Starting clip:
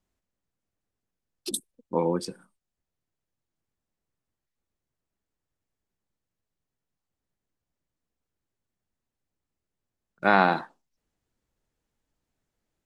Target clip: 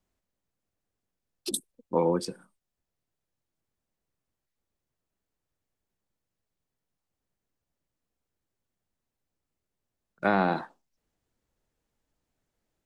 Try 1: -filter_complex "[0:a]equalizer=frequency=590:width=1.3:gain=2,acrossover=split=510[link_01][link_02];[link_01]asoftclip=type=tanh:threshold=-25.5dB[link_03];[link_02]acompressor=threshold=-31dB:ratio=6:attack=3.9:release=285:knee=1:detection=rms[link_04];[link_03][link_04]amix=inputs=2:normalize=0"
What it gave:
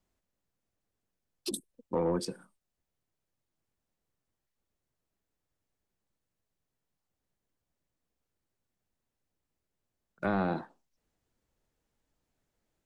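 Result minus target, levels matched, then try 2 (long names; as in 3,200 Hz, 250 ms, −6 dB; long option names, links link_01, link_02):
soft clipping: distortion +14 dB; downward compressor: peak gain reduction +9 dB
-filter_complex "[0:a]equalizer=frequency=590:width=1.3:gain=2,acrossover=split=510[link_01][link_02];[link_01]asoftclip=type=tanh:threshold=-15dB[link_03];[link_02]acompressor=threshold=-20.5dB:ratio=6:attack=3.9:release=285:knee=1:detection=rms[link_04];[link_03][link_04]amix=inputs=2:normalize=0"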